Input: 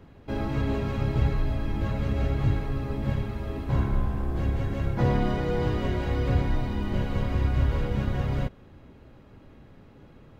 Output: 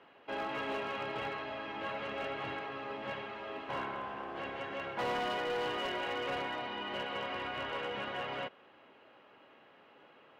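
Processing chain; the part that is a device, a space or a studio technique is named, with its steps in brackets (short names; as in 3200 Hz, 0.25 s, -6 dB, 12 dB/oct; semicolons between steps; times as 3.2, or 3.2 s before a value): megaphone (BPF 650–2900 Hz; bell 2900 Hz +9 dB 0.24 oct; hard clip -32 dBFS, distortion -16 dB); gain +1.5 dB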